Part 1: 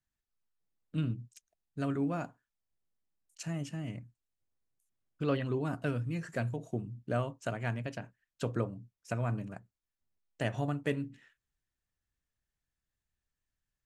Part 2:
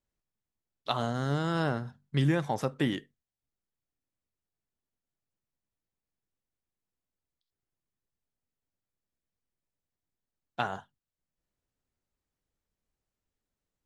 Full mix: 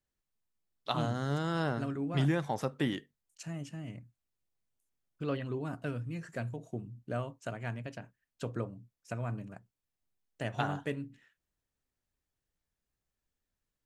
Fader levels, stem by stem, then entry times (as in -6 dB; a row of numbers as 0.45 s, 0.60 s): -3.5 dB, -3.0 dB; 0.00 s, 0.00 s